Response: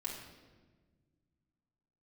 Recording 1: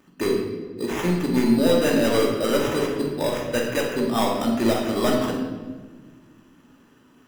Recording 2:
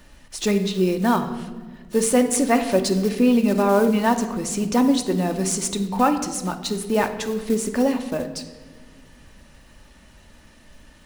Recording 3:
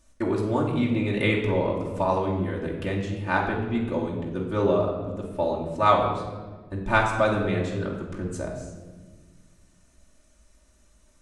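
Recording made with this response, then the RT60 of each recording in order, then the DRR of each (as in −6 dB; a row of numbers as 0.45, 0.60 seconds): 3; 1.4 s, non-exponential decay, 1.4 s; −13.5, 5.5, −4.0 decibels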